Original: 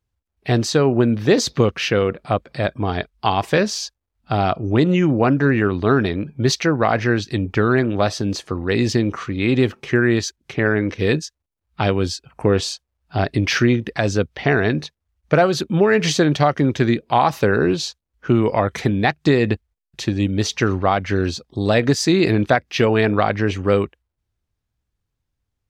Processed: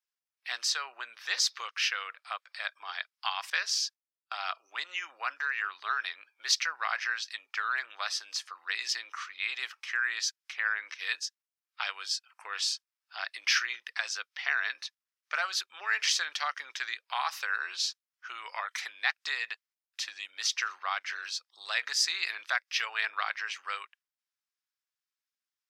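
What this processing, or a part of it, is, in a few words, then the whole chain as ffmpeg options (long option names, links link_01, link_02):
headphones lying on a table: -filter_complex "[0:a]highpass=frequency=1200:width=0.5412,highpass=frequency=1200:width=1.3066,equalizer=frequency=5200:width_type=o:width=0.25:gain=6,asettb=1/sr,asplit=3[link_01][link_02][link_03];[link_01]atrim=end=3.504[link_04];[link_02]atrim=start=3.5:end=4.45,asetpts=PTS-STARTPTS,afade=type=in:duration=0.004:curve=qsin,afade=type=out:start_time=0.946:duration=0.004:curve=qsin,agate=range=-33dB:threshold=-34dB:ratio=3:detection=peak[link_05];[link_03]atrim=start=4.446[link_06];[link_04][link_05]acrossfade=duration=0.004:curve1=hsin:curve2=qsin[link_07];[link_07][link_06]acrossfade=duration=0.004:curve1=qsin:curve2=hsin,volume=-6dB"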